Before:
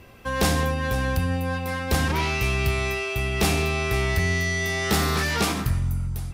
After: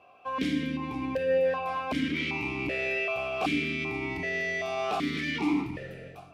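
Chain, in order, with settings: 1.43–3.75 s: overload inside the chain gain 22 dB; reverberation RT60 3.0 s, pre-delay 7 ms, DRR 9 dB; level rider gain up to 5 dB; loudness maximiser +11.5 dB; stepped vowel filter 2.6 Hz; trim -7 dB

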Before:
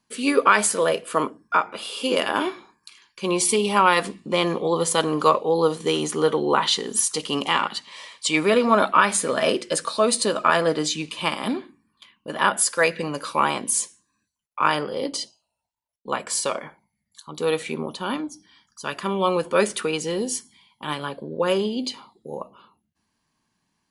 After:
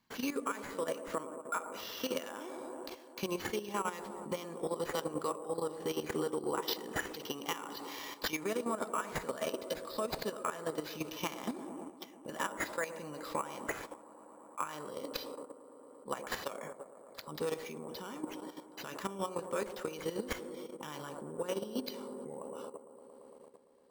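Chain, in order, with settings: band-stop 2.5 kHz, Q 24; compression 5:1, threshold -33 dBFS, peak gain reduction 20 dB; on a send: feedback echo behind a band-pass 114 ms, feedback 83%, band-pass 490 Hz, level -7 dB; on the sum: sample-and-hold 5×; level held to a coarse grid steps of 11 dB

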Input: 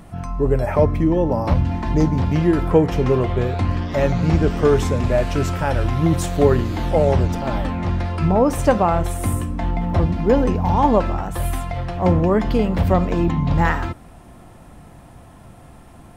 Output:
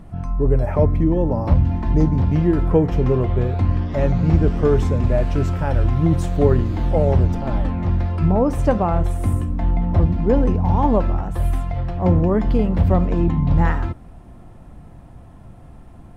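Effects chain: tilt EQ -2 dB/octave; trim -4.5 dB

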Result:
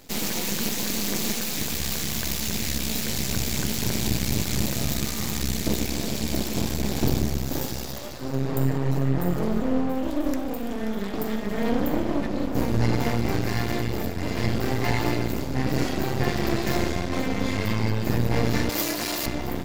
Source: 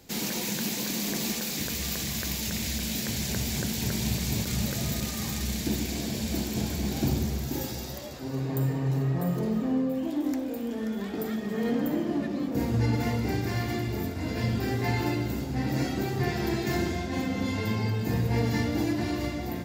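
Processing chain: half-wave rectifier; 18.69–19.26 s: RIAA curve recording; trim +7.5 dB

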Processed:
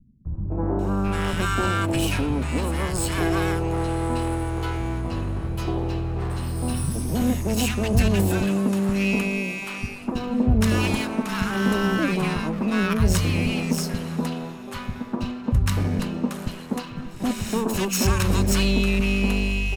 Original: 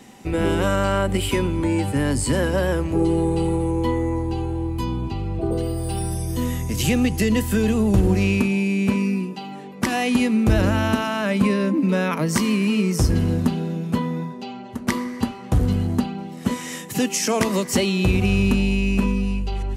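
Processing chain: comb filter that takes the minimum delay 0.74 ms; three bands offset in time lows, mids, highs 250/790 ms, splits 180/980 Hz

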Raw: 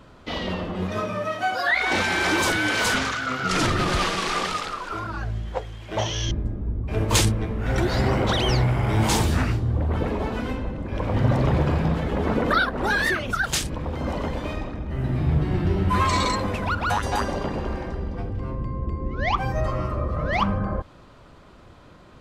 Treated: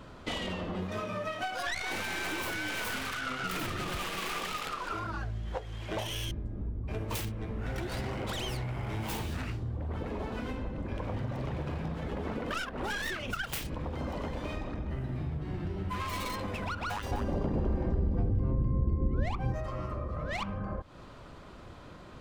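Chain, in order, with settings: tracing distortion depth 0.45 ms; dynamic bell 2.7 kHz, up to +5 dB, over -39 dBFS, Q 1.7; compression 10:1, threshold -32 dBFS, peak gain reduction 17.5 dB; 17.11–19.54 s: tilt shelf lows +8.5 dB, about 730 Hz

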